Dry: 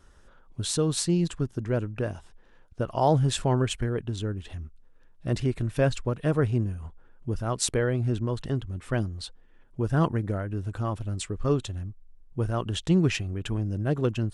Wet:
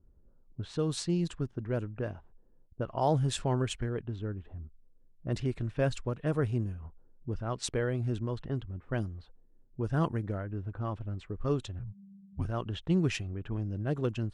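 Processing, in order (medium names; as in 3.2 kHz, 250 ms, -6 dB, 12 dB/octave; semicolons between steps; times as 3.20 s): 11.79–12.45 s: frequency shift -210 Hz; level-controlled noise filter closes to 310 Hz, open at -21 dBFS; trim -5.5 dB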